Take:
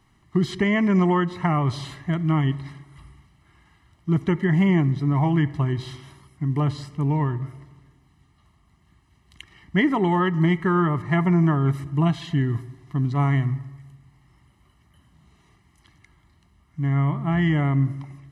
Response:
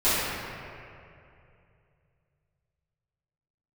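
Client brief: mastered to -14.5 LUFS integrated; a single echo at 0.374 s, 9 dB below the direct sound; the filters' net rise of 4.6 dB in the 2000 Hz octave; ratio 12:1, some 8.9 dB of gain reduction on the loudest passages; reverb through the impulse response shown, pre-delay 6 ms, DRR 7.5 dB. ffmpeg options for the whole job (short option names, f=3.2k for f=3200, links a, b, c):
-filter_complex "[0:a]equalizer=f=2k:t=o:g=5,acompressor=threshold=-24dB:ratio=12,aecho=1:1:374:0.355,asplit=2[a][b];[1:a]atrim=start_sample=2205,adelay=6[c];[b][c]afir=irnorm=-1:irlink=0,volume=-25dB[d];[a][d]amix=inputs=2:normalize=0,volume=14dB"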